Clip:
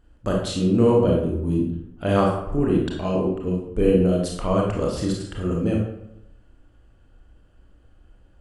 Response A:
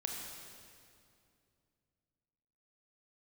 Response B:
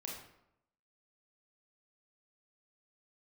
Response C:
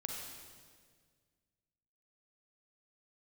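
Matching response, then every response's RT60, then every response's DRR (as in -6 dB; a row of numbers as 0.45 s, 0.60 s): B; 2.5 s, 0.80 s, 1.8 s; 0.0 dB, -2.0 dB, 0.0 dB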